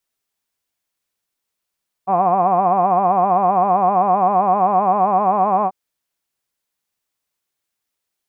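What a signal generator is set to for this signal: formant-synthesis vowel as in hod, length 3.64 s, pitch 183 Hz, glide +1.5 st, vibrato 7.7 Hz, vibrato depth 1.25 st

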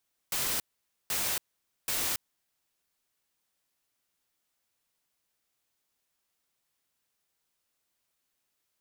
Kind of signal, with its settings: noise bursts white, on 0.28 s, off 0.50 s, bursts 3, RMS -30.5 dBFS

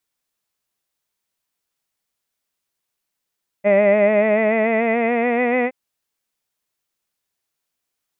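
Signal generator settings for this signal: formant vowel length 2.07 s, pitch 199 Hz, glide +4 st, vibrato 6.9 Hz, vibrato depth 0.55 st, F1 600 Hz, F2 2000 Hz, F3 2500 Hz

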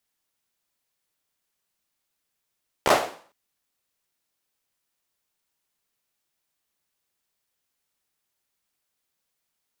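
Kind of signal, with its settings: hand clap length 0.46 s, apart 14 ms, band 620 Hz, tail 0.47 s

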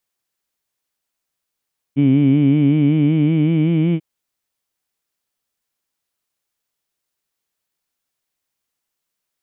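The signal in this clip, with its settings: formant-synthesis vowel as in heed, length 2.04 s, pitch 136 Hz, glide +3.5 st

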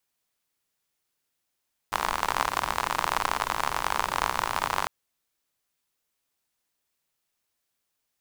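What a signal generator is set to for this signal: rain from filtered ticks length 2.95 s, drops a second 60, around 1000 Hz, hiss -11.5 dB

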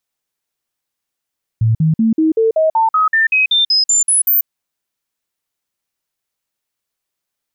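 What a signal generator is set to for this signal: stepped sine 112 Hz up, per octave 2, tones 15, 0.14 s, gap 0.05 s -9.5 dBFS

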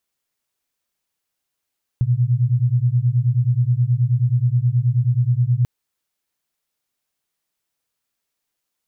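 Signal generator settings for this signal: beating tones 118 Hz, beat 9.4 Hz, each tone -17.5 dBFS 3.64 s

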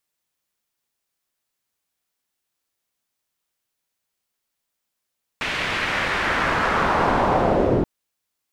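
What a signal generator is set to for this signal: swept filtered noise white, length 2.43 s lowpass, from 2500 Hz, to 330 Hz, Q 1.6, linear, gain ramp +15.5 dB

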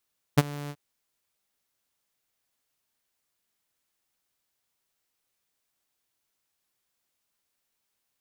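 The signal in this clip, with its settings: ADSR saw 145 Hz, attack 16 ms, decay 30 ms, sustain -21.5 dB, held 0.33 s, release 53 ms -10 dBFS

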